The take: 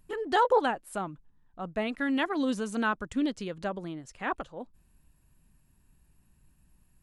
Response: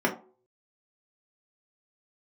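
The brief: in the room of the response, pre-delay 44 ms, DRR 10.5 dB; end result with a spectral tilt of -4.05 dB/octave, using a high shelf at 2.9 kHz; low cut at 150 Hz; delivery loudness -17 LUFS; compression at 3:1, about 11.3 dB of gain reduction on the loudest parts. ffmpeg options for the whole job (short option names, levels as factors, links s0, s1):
-filter_complex "[0:a]highpass=150,highshelf=f=2900:g=5.5,acompressor=threshold=0.02:ratio=3,asplit=2[s0][s1];[1:a]atrim=start_sample=2205,adelay=44[s2];[s1][s2]afir=irnorm=-1:irlink=0,volume=0.0668[s3];[s0][s3]amix=inputs=2:normalize=0,volume=10"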